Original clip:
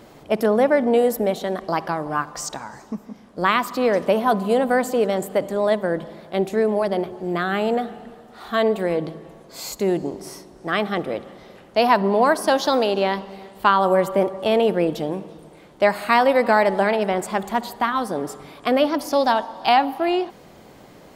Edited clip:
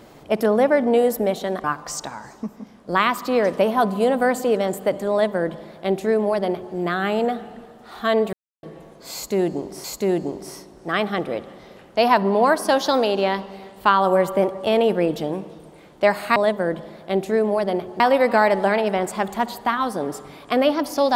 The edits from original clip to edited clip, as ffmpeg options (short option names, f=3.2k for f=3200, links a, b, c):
-filter_complex "[0:a]asplit=7[a][b][c][d][e][f][g];[a]atrim=end=1.642[h];[b]atrim=start=2.128:end=8.82,asetpts=PTS-STARTPTS,afade=t=out:st=6.688:d=0.004:c=hsin[i];[c]atrim=start=8.82:end=9.12,asetpts=PTS-STARTPTS,volume=0[j];[d]atrim=start=9.12:end=10.332,asetpts=PTS-STARTPTS,afade=t=in:d=0.004:c=hsin[k];[e]atrim=start=9.628:end=16.152[l];[f]atrim=start=5.598:end=7.242[m];[g]atrim=start=16.148[n];[i][j][k]concat=n=3:v=0:a=1[o];[h][o]acrossfade=d=0.004:c1=hsin:c2=hsin[p];[p][l]acrossfade=d=0.004:c1=hsin:c2=hsin[q];[q][m]acrossfade=d=0.004:c1=hsin:c2=hsin[r];[r][n]acrossfade=d=0.004:c1=hsin:c2=hsin"